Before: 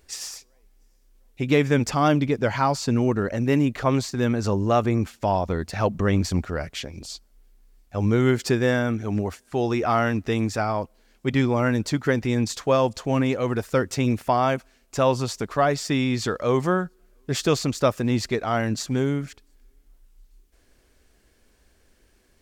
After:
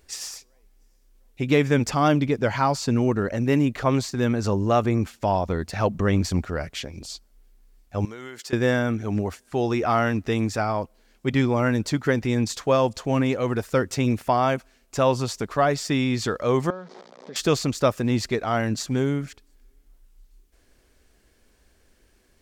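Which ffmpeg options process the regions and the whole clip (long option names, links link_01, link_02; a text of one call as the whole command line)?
ffmpeg -i in.wav -filter_complex "[0:a]asettb=1/sr,asplit=3[link_01][link_02][link_03];[link_01]atrim=end=8.054[link_04];[link_02]atrim=start=8.05:end=8.53,asetpts=PTS-STARTPTS,afade=type=in:duration=0.004:curve=qsin,afade=type=out:start_time=0.476:duration=0.004:curve=qsin,highpass=frequency=1100:poles=1,acompressor=threshold=-35dB:ratio=5:attack=3.2:release=140:knee=1:detection=peak,bandreject=frequency=2400:width=20[link_05];[link_03]atrim=start=8.526[link_06];[link_04][link_05]acrossfade=duration=0.004:curve1=hsin:curve2=qsin[link_07];[link_07][link_06]acrossfade=duration=0.004:curve1=qsin:curve2=hsin,asettb=1/sr,asplit=3[link_08][link_09][link_10];[link_08]atrim=end=16.704[link_11];[link_09]atrim=start=16.7:end=17.36,asetpts=PTS-STARTPTS,afade=type=in:duration=0.004:curve=qsin,afade=type=out:start_time=0.656:duration=0.004:curve=qsin,aeval=exprs='val(0)+0.5*0.0188*sgn(val(0))':channel_layout=same,acompressor=threshold=-33dB:ratio=4:attack=3.2:release=140:knee=1:detection=peak,highpass=frequency=200:width=0.5412,highpass=frequency=200:width=1.3066,equalizer=frequency=320:width_type=q:width=4:gain=-9,equalizer=frequency=540:width_type=q:width=4:gain=7,equalizer=frequency=870:width_type=q:width=4:gain=3,equalizer=frequency=1500:width_type=q:width=4:gain=-5,equalizer=frequency=2700:width_type=q:width=4:gain=-8,lowpass=frequency=5200:width=0.5412,lowpass=frequency=5200:width=1.3066[link_12];[link_10]atrim=start=17.356[link_13];[link_11][link_12]acrossfade=duration=0.004:curve1=hsin:curve2=qsin[link_14];[link_14][link_13]acrossfade=duration=0.004:curve1=qsin:curve2=hsin" out.wav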